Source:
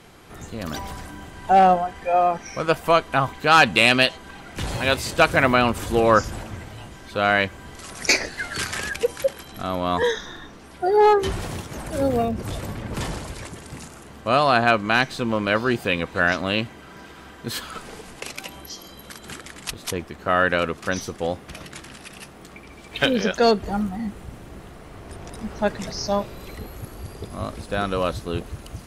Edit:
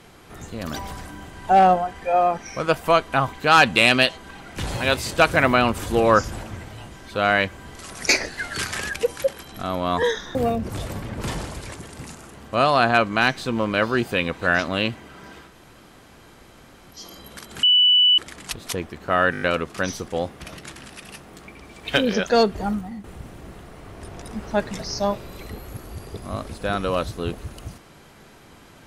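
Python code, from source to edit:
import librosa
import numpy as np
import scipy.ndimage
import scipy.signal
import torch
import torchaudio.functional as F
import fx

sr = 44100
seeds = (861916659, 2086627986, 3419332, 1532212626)

y = fx.edit(x, sr, fx.cut(start_s=10.35, length_s=1.73),
    fx.room_tone_fill(start_s=17.21, length_s=1.49, crossfade_s=0.16),
    fx.insert_tone(at_s=19.36, length_s=0.55, hz=2970.0, db=-12.0),
    fx.stutter(start_s=20.5, slice_s=0.02, count=6),
    fx.fade_out_to(start_s=23.77, length_s=0.35, floor_db=-10.5), tone=tone)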